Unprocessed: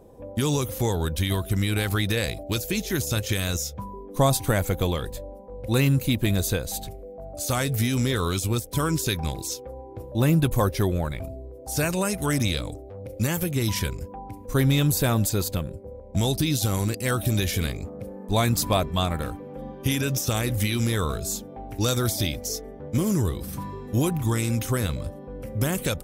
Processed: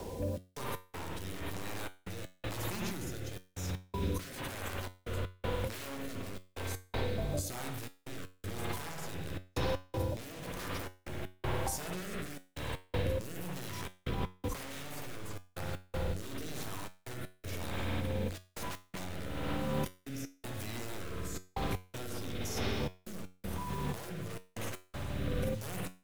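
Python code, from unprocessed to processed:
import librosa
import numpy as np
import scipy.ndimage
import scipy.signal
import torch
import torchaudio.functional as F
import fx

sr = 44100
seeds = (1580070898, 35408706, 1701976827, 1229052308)

y = fx.peak_eq(x, sr, hz=950.0, db=11.5, octaves=0.29)
y = (np.mod(10.0 ** (17.5 / 20.0) * y + 1.0, 2.0) - 1.0) / 10.0 ** (17.5 / 20.0)
y = fx.rev_spring(y, sr, rt60_s=1.7, pass_ms=(55,), chirp_ms=80, drr_db=0.5)
y = fx.over_compress(y, sr, threshold_db=-35.0, ratio=-1.0)
y = fx.quant_dither(y, sr, seeds[0], bits=8, dither='none')
y = fx.rotary(y, sr, hz=1.0)
y = fx.step_gate(y, sr, bpm=80, pattern='xx.x.xxx', floor_db=-60.0, edge_ms=4.5)
y = fx.comb_fb(y, sr, f0_hz=92.0, decay_s=0.31, harmonics='all', damping=0.0, mix_pct=60)
y = fx.band_squash(y, sr, depth_pct=40)
y = F.gain(torch.from_numpy(y), 3.0).numpy()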